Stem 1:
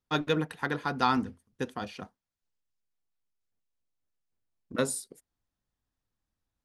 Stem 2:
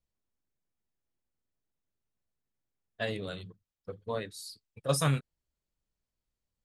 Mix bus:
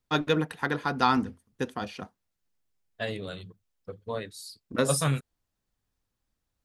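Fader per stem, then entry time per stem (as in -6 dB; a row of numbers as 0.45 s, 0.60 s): +2.5 dB, +1.0 dB; 0.00 s, 0.00 s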